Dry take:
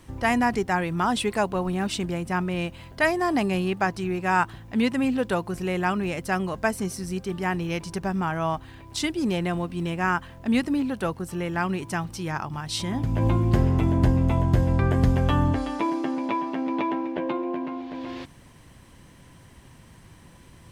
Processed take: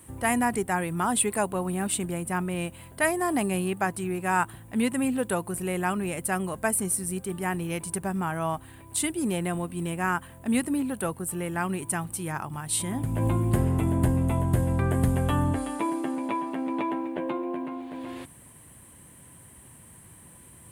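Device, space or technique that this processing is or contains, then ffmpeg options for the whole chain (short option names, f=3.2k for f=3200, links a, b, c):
budget condenser microphone: -af "highpass=62,highshelf=f=7.2k:t=q:w=3:g=10.5,volume=-2.5dB"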